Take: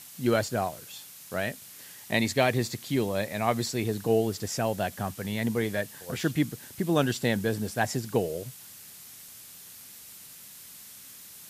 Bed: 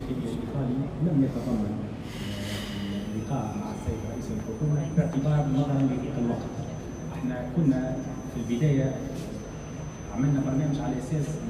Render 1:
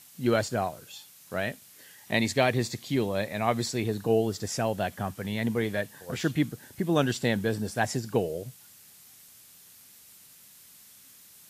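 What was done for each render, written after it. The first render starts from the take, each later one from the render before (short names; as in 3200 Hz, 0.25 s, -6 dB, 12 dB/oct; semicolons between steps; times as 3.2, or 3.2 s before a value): noise print and reduce 6 dB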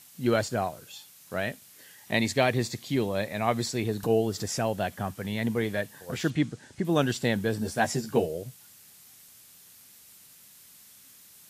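4.03–4.69 upward compressor, threshold -27 dBFS; 6.3–6.85 LPF 8300 Hz 24 dB/oct; 7.6–8.26 doubler 13 ms -3.5 dB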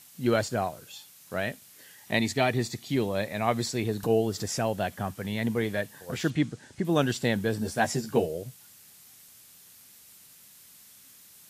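2.19–2.9 notch comb 540 Hz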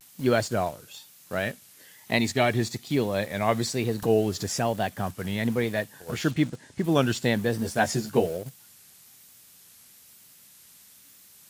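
in parallel at -11.5 dB: requantised 6-bit, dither none; on the sum: vibrato 1.1 Hz 87 cents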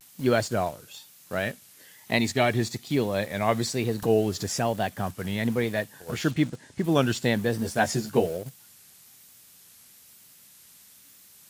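nothing audible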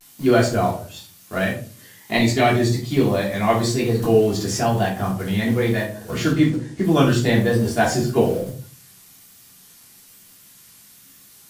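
shoebox room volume 280 m³, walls furnished, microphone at 3.2 m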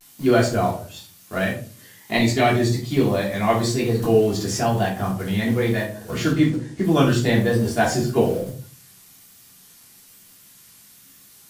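gain -1 dB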